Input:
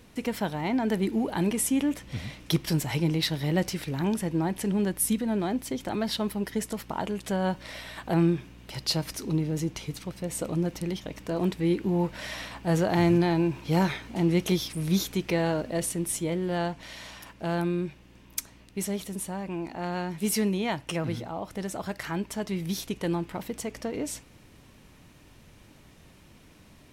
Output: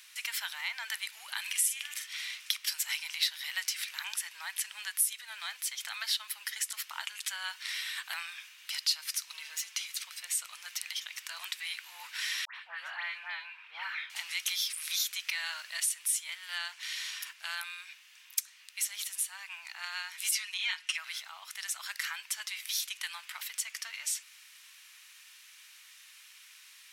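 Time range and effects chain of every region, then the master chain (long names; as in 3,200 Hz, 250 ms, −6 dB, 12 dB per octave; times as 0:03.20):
0:01.41–0:02.07: high-pass filter 1,200 Hz + double-tracking delay 45 ms −5.5 dB
0:09.34–0:09.75: phase distortion by the signal itself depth 0.064 ms + comb filter 4.5 ms, depth 61%
0:12.45–0:14.10: high-frequency loss of the air 490 metres + all-pass dispersion highs, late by 104 ms, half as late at 1,900 Hz
0:20.31–0:20.98: resonant band-pass 2,700 Hz, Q 0.51 + comb filter 5.5 ms, depth 96%
whole clip: Bessel high-pass filter 2,200 Hz, order 6; downward compressor 2 to 1, threshold −41 dBFS; level +8.5 dB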